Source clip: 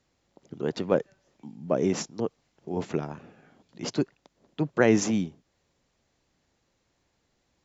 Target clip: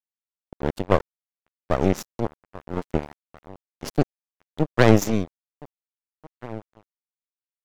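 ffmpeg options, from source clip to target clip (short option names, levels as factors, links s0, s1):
-filter_complex "[0:a]aeval=exprs='0.422*(cos(1*acos(clip(val(0)/0.422,-1,1)))-cos(1*PI/2))+0.133*(cos(4*acos(clip(val(0)/0.422,-1,1)))-cos(4*PI/2))':c=same,asplit=2[s0][s1];[s1]adelay=1633,volume=0.158,highshelf=f=4000:g=-36.7[s2];[s0][s2]amix=inputs=2:normalize=0,aeval=exprs='sgn(val(0))*max(abs(val(0))-0.0251,0)':c=same,volume=1.58"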